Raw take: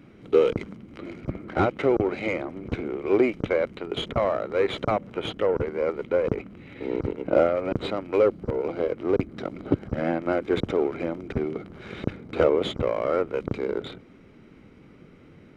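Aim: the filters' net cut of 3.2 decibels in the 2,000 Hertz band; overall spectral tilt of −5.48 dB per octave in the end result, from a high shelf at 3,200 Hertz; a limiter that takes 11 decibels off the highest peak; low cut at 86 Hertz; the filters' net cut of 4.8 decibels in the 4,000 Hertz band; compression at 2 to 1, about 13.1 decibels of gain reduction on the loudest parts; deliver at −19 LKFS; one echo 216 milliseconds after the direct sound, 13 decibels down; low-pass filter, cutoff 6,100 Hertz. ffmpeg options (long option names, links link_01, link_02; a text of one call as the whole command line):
ffmpeg -i in.wav -af "highpass=86,lowpass=6100,equalizer=frequency=2000:width_type=o:gain=-4,highshelf=frequency=3200:gain=5.5,equalizer=frequency=4000:width_type=o:gain=-8,acompressor=threshold=-39dB:ratio=2,alimiter=level_in=4.5dB:limit=-24dB:level=0:latency=1,volume=-4.5dB,aecho=1:1:216:0.224,volume=21dB" out.wav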